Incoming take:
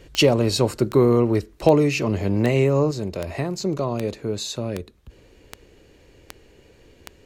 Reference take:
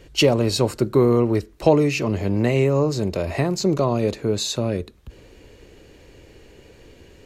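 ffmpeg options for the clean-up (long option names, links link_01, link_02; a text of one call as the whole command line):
ffmpeg -i in.wav -af "adeclick=threshold=4,asetnsamples=nb_out_samples=441:pad=0,asendcmd='2.91 volume volume 4.5dB',volume=0dB" out.wav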